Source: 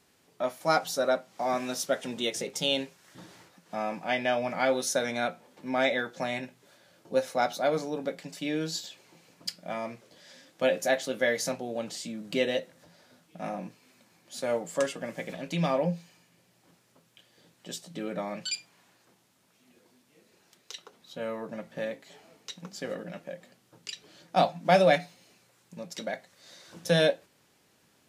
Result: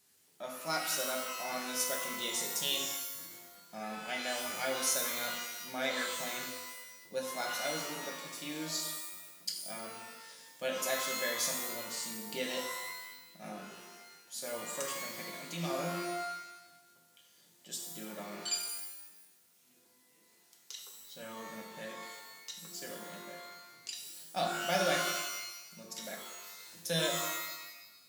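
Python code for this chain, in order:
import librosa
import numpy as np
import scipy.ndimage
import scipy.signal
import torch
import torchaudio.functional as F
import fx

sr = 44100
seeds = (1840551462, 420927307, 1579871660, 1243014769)

y = scipy.signal.lfilter([1.0, -0.8], [1.0], x)
y = fx.rev_shimmer(y, sr, seeds[0], rt60_s=1.0, semitones=12, shimmer_db=-2, drr_db=1.0)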